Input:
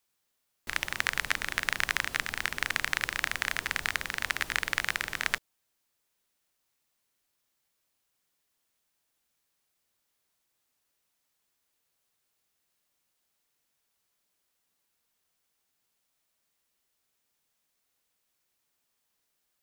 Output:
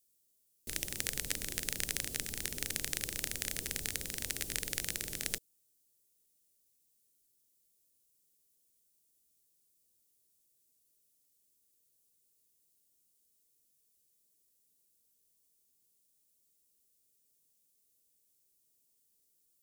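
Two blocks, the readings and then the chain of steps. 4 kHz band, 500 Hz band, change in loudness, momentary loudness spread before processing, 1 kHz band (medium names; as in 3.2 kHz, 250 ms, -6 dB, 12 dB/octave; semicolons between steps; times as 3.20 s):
-5.5 dB, -3.0 dB, -6.0 dB, 4 LU, -18.5 dB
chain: FFT filter 460 Hz 0 dB, 1.1 kHz -22 dB, 8.9 kHz +6 dB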